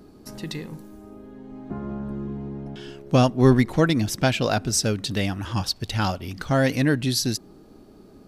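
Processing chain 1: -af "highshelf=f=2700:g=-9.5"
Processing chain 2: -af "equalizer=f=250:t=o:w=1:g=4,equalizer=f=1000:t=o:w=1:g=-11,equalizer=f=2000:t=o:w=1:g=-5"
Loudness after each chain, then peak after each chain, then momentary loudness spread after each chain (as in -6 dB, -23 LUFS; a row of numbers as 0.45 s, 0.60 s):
-24.0 LUFS, -22.5 LUFS; -4.5 dBFS, -3.0 dBFS; 20 LU, 21 LU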